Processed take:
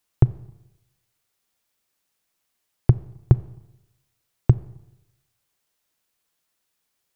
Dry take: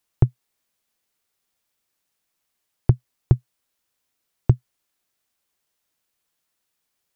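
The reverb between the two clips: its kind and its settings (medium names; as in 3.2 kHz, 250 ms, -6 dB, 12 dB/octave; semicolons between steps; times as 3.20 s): Schroeder reverb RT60 0.92 s, combs from 29 ms, DRR 17 dB; trim +1 dB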